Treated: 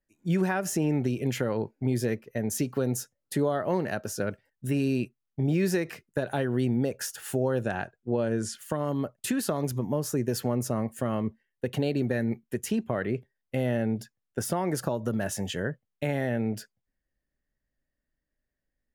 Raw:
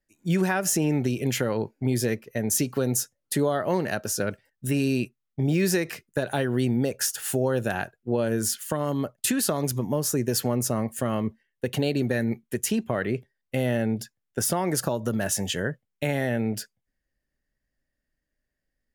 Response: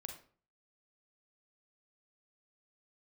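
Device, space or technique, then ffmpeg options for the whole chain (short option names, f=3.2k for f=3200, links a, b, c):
behind a face mask: -filter_complex "[0:a]asettb=1/sr,asplit=3[a][b][c];[a]atrim=end=7.634[d];[b]atrim=start=7.63:end=8.55,asetpts=PTS-STARTPTS,afade=t=in:d=0.004:c=qsin,afade=t=out:st=0.916:d=0.004:c=qsin,lowpass=f=9.2k:w=0.5412,lowpass=f=9.2k:w=1.3066[e];[c]atrim=start=8.546[f];[d][e]acrossfade=d=0.004:c1=hsin:c2=qsin[g];[g][f]acrossfade=d=0.004:c1=qsin:c2=hsin,highshelf=f=2.7k:g=-7.5,volume=-2dB"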